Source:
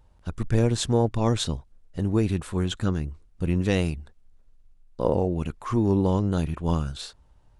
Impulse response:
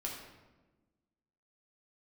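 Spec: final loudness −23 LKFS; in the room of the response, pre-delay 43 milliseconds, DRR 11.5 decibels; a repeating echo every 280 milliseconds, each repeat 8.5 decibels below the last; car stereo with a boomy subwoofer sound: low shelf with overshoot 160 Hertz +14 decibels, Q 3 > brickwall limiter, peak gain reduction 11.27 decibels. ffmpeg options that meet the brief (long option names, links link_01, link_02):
-filter_complex "[0:a]aecho=1:1:280|560|840|1120:0.376|0.143|0.0543|0.0206,asplit=2[link_01][link_02];[1:a]atrim=start_sample=2205,adelay=43[link_03];[link_02][link_03]afir=irnorm=-1:irlink=0,volume=-12.5dB[link_04];[link_01][link_04]amix=inputs=2:normalize=0,lowshelf=frequency=160:width_type=q:width=3:gain=14,volume=-8.5dB,alimiter=limit=-15dB:level=0:latency=1"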